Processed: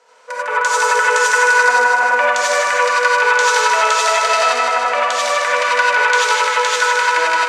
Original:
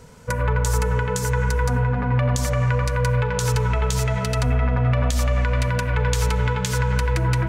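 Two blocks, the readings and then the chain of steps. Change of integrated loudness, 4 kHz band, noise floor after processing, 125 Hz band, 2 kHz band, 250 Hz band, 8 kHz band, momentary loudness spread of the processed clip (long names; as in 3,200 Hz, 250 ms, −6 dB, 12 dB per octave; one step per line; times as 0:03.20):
+8.0 dB, +13.0 dB, −24 dBFS, below −40 dB, +17.0 dB, below −15 dB, +9.5 dB, 4 LU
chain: high-pass filter 550 Hz 24 dB per octave
high-frequency loss of the air 82 metres
automatic gain control gain up to 12 dB
feedback echo with a high-pass in the loop 154 ms, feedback 66%, high-pass 1,100 Hz, level −4 dB
reverb whose tail is shaped and stops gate 120 ms rising, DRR −4 dB
level −2 dB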